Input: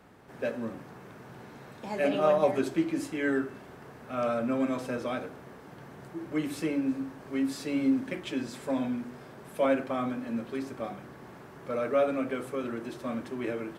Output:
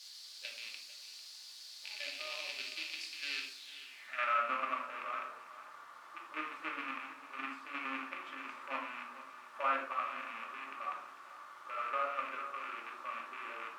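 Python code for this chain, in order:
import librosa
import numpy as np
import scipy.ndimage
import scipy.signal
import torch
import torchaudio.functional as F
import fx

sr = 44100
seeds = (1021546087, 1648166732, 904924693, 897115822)

p1 = fx.rattle_buzz(x, sr, strikes_db=-40.0, level_db=-18.0)
p2 = scipy.signal.sosfilt(scipy.signal.butter(2, 230.0, 'highpass', fs=sr, output='sos'), p1)
p3 = fx.low_shelf(p2, sr, hz=390.0, db=-7.0)
p4 = fx.hum_notches(p3, sr, base_hz=60, count=10)
p5 = fx.level_steps(p4, sr, step_db=10)
p6 = fx.quant_dither(p5, sr, seeds[0], bits=8, dither='triangular')
p7 = fx.filter_sweep_bandpass(p6, sr, from_hz=4500.0, to_hz=1200.0, start_s=3.52, end_s=4.39, q=4.8)
p8 = p7 + fx.echo_single(p7, sr, ms=447, db=-15.0, dry=0)
p9 = fx.room_shoebox(p8, sr, seeds[1], volume_m3=500.0, walls='furnished', distance_m=2.5)
y = p9 * librosa.db_to_amplitude(6.0)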